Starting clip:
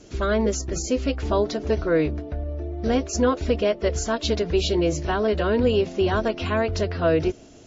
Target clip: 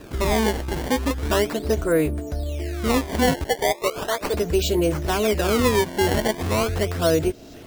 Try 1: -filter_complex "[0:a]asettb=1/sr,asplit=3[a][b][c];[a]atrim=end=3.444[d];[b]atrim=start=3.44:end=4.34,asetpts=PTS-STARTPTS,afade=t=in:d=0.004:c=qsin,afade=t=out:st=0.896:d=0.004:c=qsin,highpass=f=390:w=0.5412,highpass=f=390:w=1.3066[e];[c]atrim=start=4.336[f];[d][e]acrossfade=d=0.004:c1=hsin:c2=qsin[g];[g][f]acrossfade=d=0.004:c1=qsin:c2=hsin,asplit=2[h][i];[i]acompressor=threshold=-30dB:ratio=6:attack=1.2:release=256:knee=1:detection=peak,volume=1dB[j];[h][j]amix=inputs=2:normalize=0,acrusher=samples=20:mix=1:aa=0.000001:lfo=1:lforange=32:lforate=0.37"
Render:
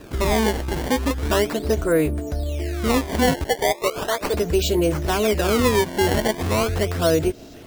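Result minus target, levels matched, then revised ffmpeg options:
compressor: peak gain reduction -6.5 dB
-filter_complex "[0:a]asettb=1/sr,asplit=3[a][b][c];[a]atrim=end=3.444[d];[b]atrim=start=3.44:end=4.34,asetpts=PTS-STARTPTS,afade=t=in:d=0.004:c=qsin,afade=t=out:st=0.896:d=0.004:c=qsin,highpass=f=390:w=0.5412,highpass=f=390:w=1.3066[e];[c]atrim=start=4.336[f];[d][e]acrossfade=d=0.004:c1=hsin:c2=qsin[g];[g][f]acrossfade=d=0.004:c1=qsin:c2=hsin,asplit=2[h][i];[i]acompressor=threshold=-38dB:ratio=6:attack=1.2:release=256:knee=1:detection=peak,volume=1dB[j];[h][j]amix=inputs=2:normalize=0,acrusher=samples=20:mix=1:aa=0.000001:lfo=1:lforange=32:lforate=0.37"

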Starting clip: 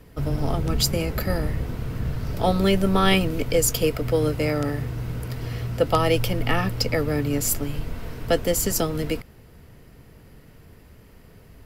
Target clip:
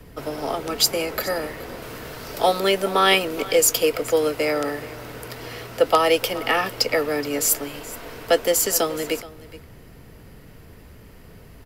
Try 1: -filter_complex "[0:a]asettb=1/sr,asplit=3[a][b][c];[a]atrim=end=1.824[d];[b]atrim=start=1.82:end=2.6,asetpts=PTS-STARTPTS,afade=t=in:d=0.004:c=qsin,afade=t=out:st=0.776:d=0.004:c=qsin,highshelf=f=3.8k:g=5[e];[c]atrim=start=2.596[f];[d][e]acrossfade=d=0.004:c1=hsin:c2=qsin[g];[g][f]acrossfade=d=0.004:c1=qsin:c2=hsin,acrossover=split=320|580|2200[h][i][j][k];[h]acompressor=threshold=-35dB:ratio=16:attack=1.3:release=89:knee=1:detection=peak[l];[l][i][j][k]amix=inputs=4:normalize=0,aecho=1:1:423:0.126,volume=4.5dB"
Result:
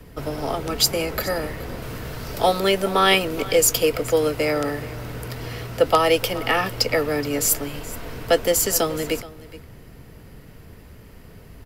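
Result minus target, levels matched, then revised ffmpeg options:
compressor: peak gain reduction -10 dB
-filter_complex "[0:a]asettb=1/sr,asplit=3[a][b][c];[a]atrim=end=1.824[d];[b]atrim=start=1.82:end=2.6,asetpts=PTS-STARTPTS,afade=t=in:d=0.004:c=qsin,afade=t=out:st=0.776:d=0.004:c=qsin,highshelf=f=3.8k:g=5[e];[c]atrim=start=2.596[f];[d][e]acrossfade=d=0.004:c1=hsin:c2=qsin[g];[g][f]acrossfade=d=0.004:c1=qsin:c2=hsin,acrossover=split=320|580|2200[h][i][j][k];[h]acompressor=threshold=-45.5dB:ratio=16:attack=1.3:release=89:knee=1:detection=peak[l];[l][i][j][k]amix=inputs=4:normalize=0,aecho=1:1:423:0.126,volume=4.5dB"

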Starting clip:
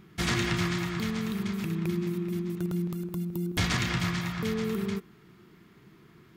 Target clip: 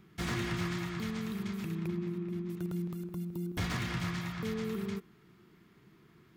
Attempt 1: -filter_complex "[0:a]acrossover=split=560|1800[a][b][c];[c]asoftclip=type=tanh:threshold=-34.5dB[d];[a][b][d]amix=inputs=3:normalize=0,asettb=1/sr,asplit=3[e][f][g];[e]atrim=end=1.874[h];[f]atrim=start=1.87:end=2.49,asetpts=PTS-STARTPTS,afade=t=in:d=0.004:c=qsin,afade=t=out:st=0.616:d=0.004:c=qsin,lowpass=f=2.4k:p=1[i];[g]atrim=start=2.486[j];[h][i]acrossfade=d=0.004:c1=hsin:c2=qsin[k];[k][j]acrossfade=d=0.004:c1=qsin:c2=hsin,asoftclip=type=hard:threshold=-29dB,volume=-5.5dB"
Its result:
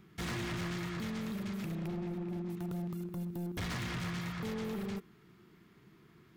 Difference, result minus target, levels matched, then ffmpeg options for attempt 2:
hard clip: distortion +16 dB
-filter_complex "[0:a]acrossover=split=560|1800[a][b][c];[c]asoftclip=type=tanh:threshold=-34.5dB[d];[a][b][d]amix=inputs=3:normalize=0,asettb=1/sr,asplit=3[e][f][g];[e]atrim=end=1.874[h];[f]atrim=start=1.87:end=2.49,asetpts=PTS-STARTPTS,afade=t=in:d=0.004:c=qsin,afade=t=out:st=0.616:d=0.004:c=qsin,lowpass=f=2.4k:p=1[i];[g]atrim=start=2.486[j];[h][i]acrossfade=d=0.004:c1=hsin:c2=qsin[k];[k][j]acrossfade=d=0.004:c1=qsin:c2=hsin,asoftclip=type=hard:threshold=-21.5dB,volume=-5.5dB"

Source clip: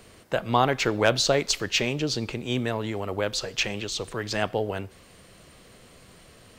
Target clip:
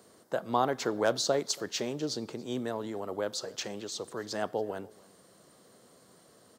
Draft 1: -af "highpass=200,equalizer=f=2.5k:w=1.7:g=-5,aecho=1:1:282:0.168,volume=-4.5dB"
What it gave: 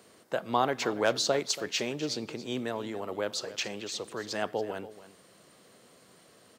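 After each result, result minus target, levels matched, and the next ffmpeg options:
echo-to-direct +8 dB; 2000 Hz band +3.0 dB
-af "highpass=200,equalizer=f=2.5k:w=1.7:g=-5,aecho=1:1:282:0.0668,volume=-4.5dB"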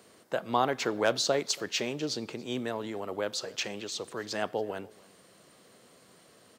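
2000 Hz band +3.0 dB
-af "highpass=200,equalizer=f=2.5k:w=1.7:g=-14.5,aecho=1:1:282:0.0668,volume=-4.5dB"

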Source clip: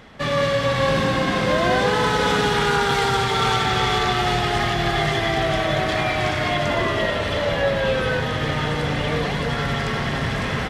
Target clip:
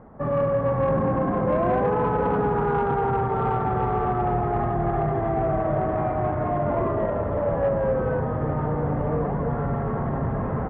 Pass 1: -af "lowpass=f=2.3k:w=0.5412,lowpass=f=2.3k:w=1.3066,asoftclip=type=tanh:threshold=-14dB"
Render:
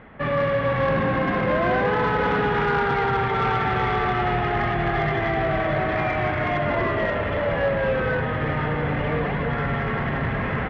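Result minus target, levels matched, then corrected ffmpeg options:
2000 Hz band +12.0 dB
-af "lowpass=f=1.1k:w=0.5412,lowpass=f=1.1k:w=1.3066,asoftclip=type=tanh:threshold=-14dB"

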